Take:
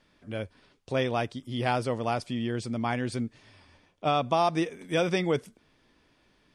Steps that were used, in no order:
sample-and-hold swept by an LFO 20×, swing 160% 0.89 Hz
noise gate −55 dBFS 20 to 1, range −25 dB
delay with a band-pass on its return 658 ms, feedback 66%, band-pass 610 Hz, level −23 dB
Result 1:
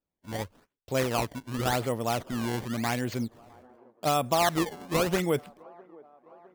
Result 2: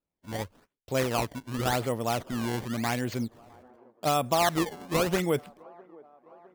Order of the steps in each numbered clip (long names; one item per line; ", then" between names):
noise gate, then sample-and-hold swept by an LFO, then delay with a band-pass on its return
sample-and-hold swept by an LFO, then noise gate, then delay with a band-pass on its return